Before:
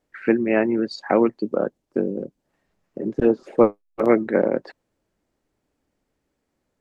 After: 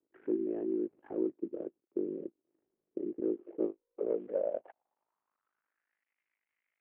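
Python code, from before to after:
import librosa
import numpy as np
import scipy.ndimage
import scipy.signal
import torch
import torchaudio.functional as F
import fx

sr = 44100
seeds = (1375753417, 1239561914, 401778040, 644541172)

p1 = fx.cvsd(x, sr, bps=16000)
p2 = fx.over_compress(p1, sr, threshold_db=-31.0, ratio=-1.0)
p3 = p1 + (p2 * librosa.db_to_amplitude(-3.0))
p4 = p3 * np.sin(2.0 * np.pi * 26.0 * np.arange(len(p3)) / sr)
p5 = fx.filter_sweep_bandpass(p4, sr, from_hz=350.0, to_hz=2100.0, start_s=3.79, end_s=6.1, q=5.0)
y = p5 * librosa.db_to_amplitude(-5.5)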